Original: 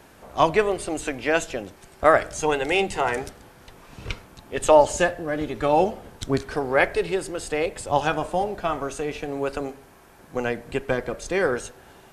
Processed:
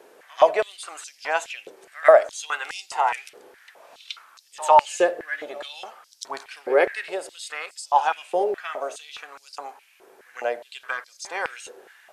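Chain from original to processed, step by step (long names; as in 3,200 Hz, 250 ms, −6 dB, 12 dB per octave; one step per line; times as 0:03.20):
echo ahead of the sound 99 ms −19 dB
high-pass on a step sequencer 4.8 Hz 430–5,100 Hz
level −4.5 dB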